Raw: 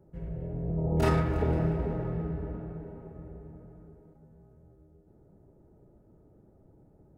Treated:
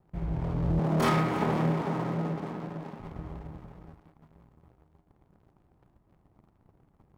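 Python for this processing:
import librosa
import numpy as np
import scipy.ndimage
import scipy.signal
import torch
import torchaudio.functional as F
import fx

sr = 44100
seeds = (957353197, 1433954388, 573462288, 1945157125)

y = fx.lower_of_two(x, sr, delay_ms=0.9)
y = fx.highpass(y, sr, hz=160.0, slope=24, at=(0.79, 3.0))
y = fx.leveller(y, sr, passes=2)
y = y * 10.0 ** (-1.5 / 20.0)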